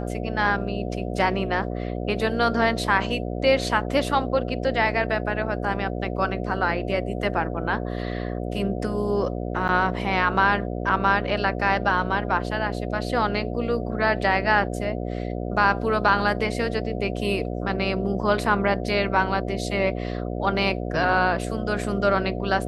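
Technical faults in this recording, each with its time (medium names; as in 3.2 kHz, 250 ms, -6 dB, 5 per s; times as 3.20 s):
buzz 60 Hz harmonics 12 -29 dBFS
9.68–9.69 s: dropout 8.3 ms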